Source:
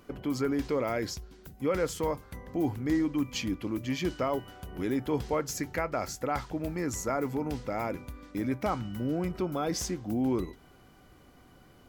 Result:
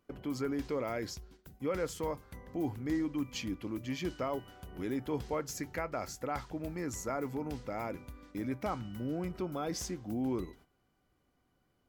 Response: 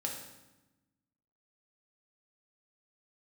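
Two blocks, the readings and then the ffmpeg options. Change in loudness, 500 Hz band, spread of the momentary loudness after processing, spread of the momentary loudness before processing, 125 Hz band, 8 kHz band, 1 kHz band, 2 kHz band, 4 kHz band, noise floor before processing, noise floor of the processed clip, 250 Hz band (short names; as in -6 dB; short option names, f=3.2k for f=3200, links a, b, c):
-5.5 dB, -5.5 dB, 7 LU, 7 LU, -5.5 dB, -5.5 dB, -5.5 dB, -5.5 dB, -5.5 dB, -57 dBFS, -76 dBFS, -5.5 dB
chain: -af "agate=range=-13dB:threshold=-51dB:ratio=16:detection=peak,volume=-5.5dB"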